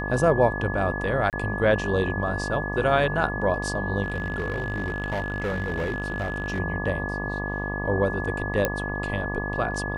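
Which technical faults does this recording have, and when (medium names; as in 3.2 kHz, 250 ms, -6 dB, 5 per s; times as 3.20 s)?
buzz 50 Hz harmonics 24 -31 dBFS
whine 1.7 kHz -31 dBFS
1.30–1.33 s: dropout 28 ms
4.04–6.60 s: clipped -23 dBFS
8.65 s: pop -8 dBFS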